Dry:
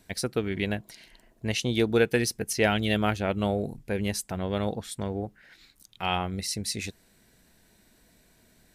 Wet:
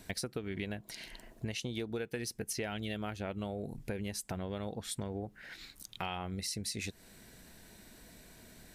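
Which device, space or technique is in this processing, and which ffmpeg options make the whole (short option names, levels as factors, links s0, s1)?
serial compression, peaks first: -af "acompressor=threshold=0.0158:ratio=6,acompressor=threshold=0.00398:ratio=1.5,volume=1.88"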